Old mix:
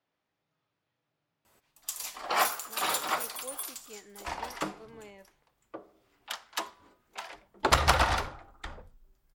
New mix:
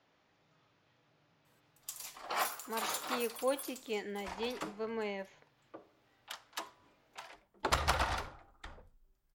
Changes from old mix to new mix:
speech +11.5 dB; background -8.0 dB

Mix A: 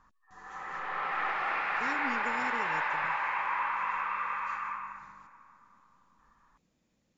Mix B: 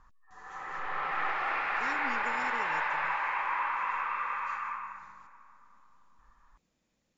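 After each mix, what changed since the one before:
speech: add low shelf 280 Hz -10 dB; master: add low shelf 80 Hz +11 dB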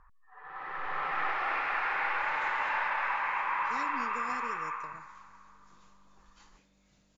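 speech: entry +1.90 s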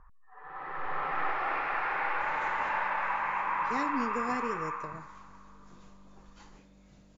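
speech +6.0 dB; master: add tilt shelf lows +5 dB, about 1200 Hz

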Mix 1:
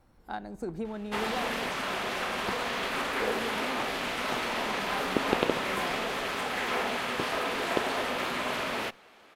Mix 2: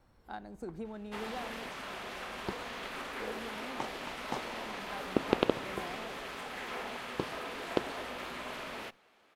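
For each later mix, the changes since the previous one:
speech -6.5 dB; first sound -10.0 dB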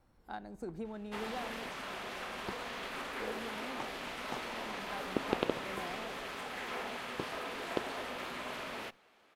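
second sound -5.0 dB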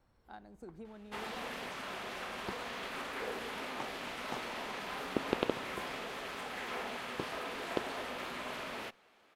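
speech -7.5 dB

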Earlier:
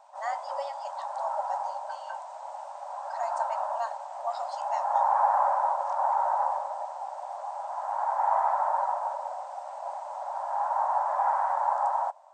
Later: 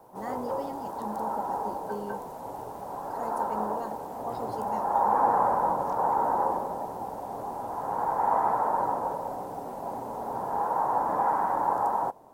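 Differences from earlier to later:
speech -7.5 dB; master: remove brick-wall FIR band-pass 550–8800 Hz

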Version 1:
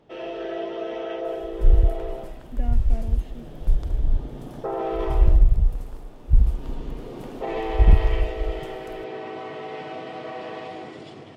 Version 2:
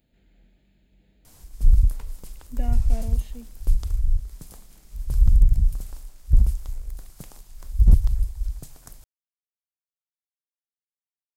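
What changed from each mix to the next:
first sound: muted; master: add tone controls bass 0 dB, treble +13 dB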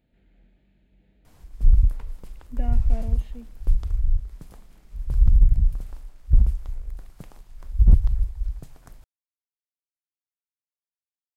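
master: add tone controls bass 0 dB, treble -13 dB

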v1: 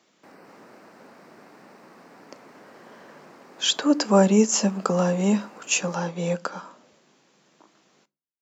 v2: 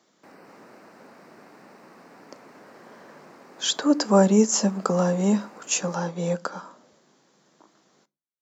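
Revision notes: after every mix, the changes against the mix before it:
speech: add bell 2600 Hz -7.5 dB 0.59 oct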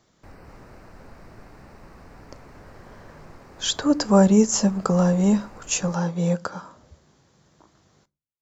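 master: remove HPF 200 Hz 24 dB/oct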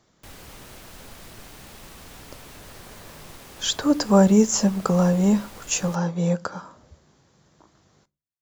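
background: remove running mean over 13 samples

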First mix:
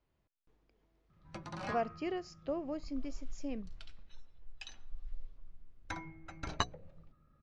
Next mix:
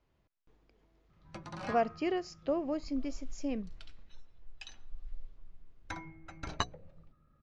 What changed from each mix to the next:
speech +5.0 dB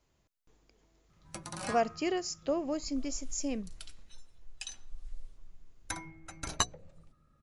master: remove air absorption 210 m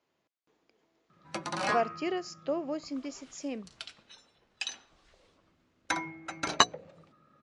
background +10.0 dB; master: add BPF 240–4200 Hz

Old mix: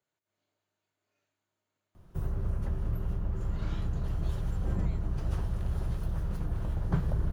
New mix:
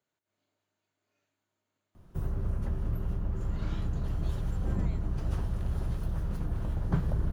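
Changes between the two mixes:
speech: send +7.5 dB; master: add bell 250 Hz +4.5 dB 0.43 oct

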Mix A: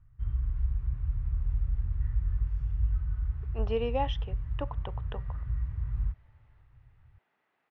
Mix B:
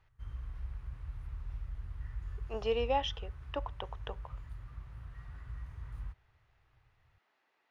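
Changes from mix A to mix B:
speech: entry -1.05 s; master: add tone controls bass -12 dB, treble +13 dB

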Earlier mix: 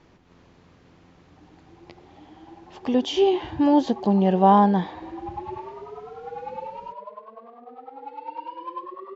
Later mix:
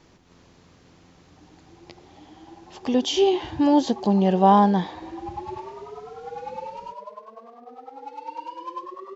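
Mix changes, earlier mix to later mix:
background: remove LPF 4500 Hz 24 dB/oct; master: add tone controls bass 0 dB, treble +10 dB

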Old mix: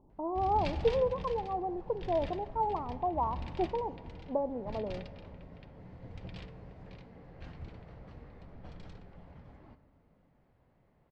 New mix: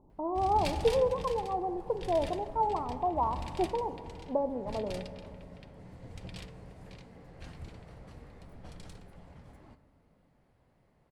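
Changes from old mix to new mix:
speech: send +7.0 dB; master: remove air absorption 190 m

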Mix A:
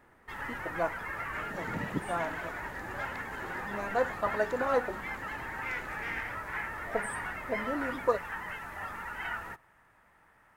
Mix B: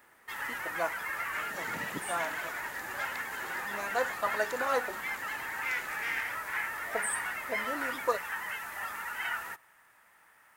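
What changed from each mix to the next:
master: add tilt +3.5 dB/oct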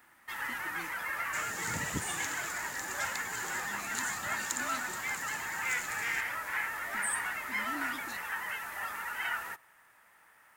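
speech: add brick-wall FIR band-stop 370–2000 Hz; second sound: remove BPF 210–3100 Hz

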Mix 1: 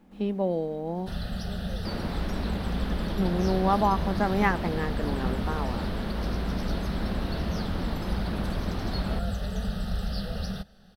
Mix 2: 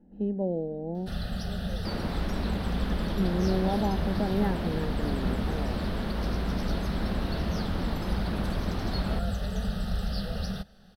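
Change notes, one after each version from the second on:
speech: add running mean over 38 samples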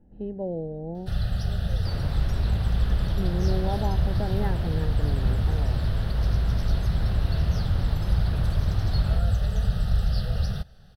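second sound -4.5 dB; master: add resonant low shelf 160 Hz +7 dB, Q 3

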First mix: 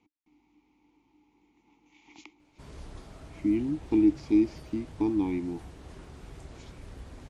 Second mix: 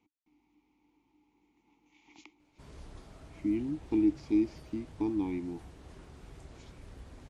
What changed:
speech -4.5 dB; background -4.5 dB

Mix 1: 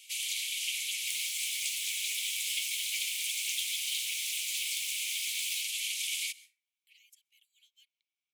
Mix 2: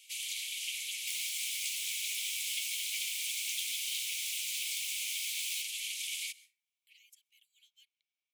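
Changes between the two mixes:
first sound -4.0 dB; second sound: send +11.5 dB

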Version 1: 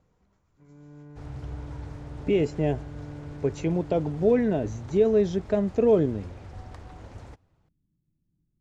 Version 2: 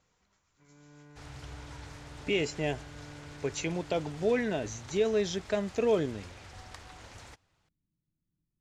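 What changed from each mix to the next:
master: add tilt shelf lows -9.5 dB, about 1100 Hz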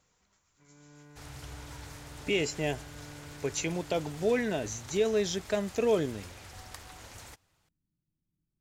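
master: remove air absorption 64 m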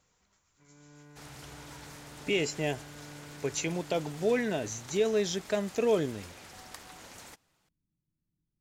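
second sound: add resonant low shelf 130 Hz -8.5 dB, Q 1.5

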